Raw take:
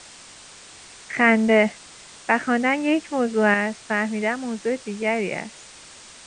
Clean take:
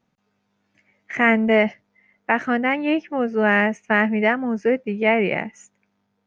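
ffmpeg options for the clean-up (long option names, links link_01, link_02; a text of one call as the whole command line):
ffmpeg -i in.wav -af "afwtdn=0.0089,asetnsamples=nb_out_samples=441:pad=0,asendcmd='3.54 volume volume 5dB',volume=0dB" out.wav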